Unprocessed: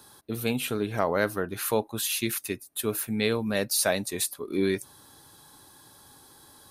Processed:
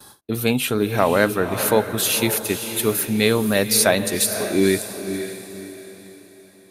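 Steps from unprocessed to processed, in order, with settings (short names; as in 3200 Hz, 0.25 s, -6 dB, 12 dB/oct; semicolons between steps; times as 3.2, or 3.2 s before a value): gate with hold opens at -41 dBFS; diffused feedback echo 0.53 s, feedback 40%, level -9 dB; gain +8 dB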